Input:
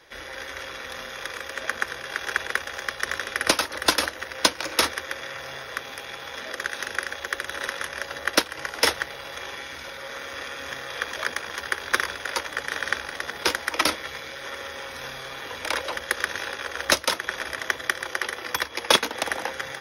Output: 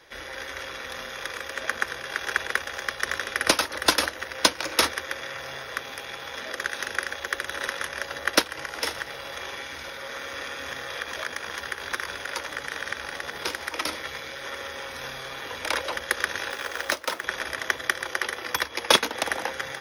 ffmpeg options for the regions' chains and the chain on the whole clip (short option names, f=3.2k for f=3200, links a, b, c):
-filter_complex "[0:a]asettb=1/sr,asplit=3[a][b][c];[a]atrim=end=8.594[d];[b]atrim=start=8.59:end=14.01,asetpts=PTS-STARTPTS,afade=t=in:d=0.004:c=qsin,afade=t=out:st=5.416:d=0.004:c=qsin,acompressor=threshold=-29dB:ratio=2:attack=3.2:release=140:knee=1:detection=peak,aecho=1:1:78|156|234|312|390|468:0.178|0.105|0.0619|0.0365|0.0215|0.0127,atrim=end_sample=239022[e];[c]atrim=start=14.006[f];[d][e]acrossfade=d=0.004:c1=hsin:c2=qsin[g];[g][f]acrossfade=d=0.004:c1=qsin:c2=hsin,asettb=1/sr,asplit=3[h][i][j];[h]atrim=end=16.504[k];[i]atrim=start=16.5:end=17.24,asetpts=PTS-STARTPTS,afade=t=in:d=0.004:c=qsin,afade=t=out:st=0.736:d=0.004:c=qsin,acrossover=split=220|2300[l][m][n];[l]acompressor=threshold=-58dB:ratio=4[o];[m]acompressor=threshold=-25dB:ratio=4[p];[n]acompressor=threshold=-32dB:ratio=4[q];[o][p][q]amix=inputs=3:normalize=0,acrusher=bits=3:mode=log:mix=0:aa=0.000001[r];[j]atrim=start=17.236[s];[k][r]acrossfade=d=0.004:c1=hsin:c2=qsin[t];[t][s]acrossfade=d=0.004:c1=qsin:c2=hsin"